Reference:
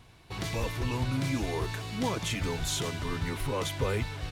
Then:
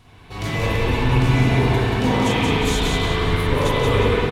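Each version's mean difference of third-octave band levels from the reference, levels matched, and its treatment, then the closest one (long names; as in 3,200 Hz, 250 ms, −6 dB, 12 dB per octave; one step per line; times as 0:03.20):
5.5 dB: on a send: repeating echo 180 ms, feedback 38%, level −4 dB
on the sum: spring reverb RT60 2.3 s, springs 39/46/59 ms, chirp 60 ms, DRR −9 dB
level +2.5 dB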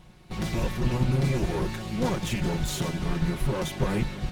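4.0 dB: lower of the sound and its delayed copy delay 5.5 ms
low-shelf EQ 460 Hz +9.5 dB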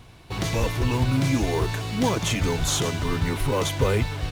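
1.0 dB: dynamic equaliser 6,400 Hz, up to +4 dB, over −54 dBFS, Q 5.7
in parallel at −11 dB: sample-rate reduction 2,500 Hz
on the sum: level +6 dB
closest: third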